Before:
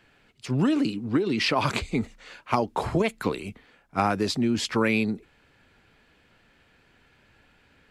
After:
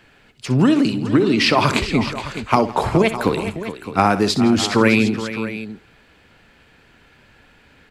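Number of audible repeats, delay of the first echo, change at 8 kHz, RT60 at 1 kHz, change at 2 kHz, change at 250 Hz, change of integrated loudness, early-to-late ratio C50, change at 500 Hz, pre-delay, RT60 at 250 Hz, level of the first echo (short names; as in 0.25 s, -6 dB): 4, 63 ms, +8.5 dB, none, +8.5 dB, +8.5 dB, +8.0 dB, none, +8.5 dB, none, none, -13.5 dB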